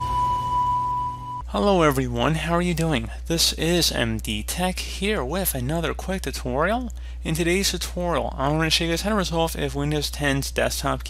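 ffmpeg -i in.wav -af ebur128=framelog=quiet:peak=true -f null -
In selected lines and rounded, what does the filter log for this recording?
Integrated loudness:
  I:         -23.2 LUFS
  Threshold: -33.2 LUFS
Loudness range:
  LRA:         3.1 LU
  Threshold: -43.2 LUFS
  LRA low:   -24.8 LUFS
  LRA high:  -21.7 LUFS
True peak:
  Peak:       -3.8 dBFS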